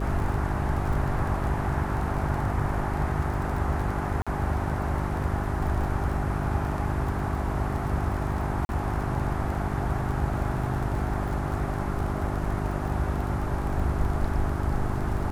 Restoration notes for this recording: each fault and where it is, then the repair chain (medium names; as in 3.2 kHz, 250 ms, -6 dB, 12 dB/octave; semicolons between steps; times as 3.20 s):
crackle 29 per s -33 dBFS
hum 50 Hz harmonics 8 -31 dBFS
4.22–4.27 s: dropout 46 ms
8.65–8.69 s: dropout 41 ms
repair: de-click; de-hum 50 Hz, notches 8; interpolate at 4.22 s, 46 ms; interpolate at 8.65 s, 41 ms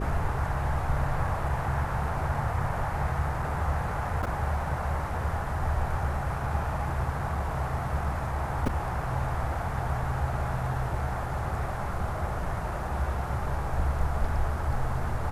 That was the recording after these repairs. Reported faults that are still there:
nothing left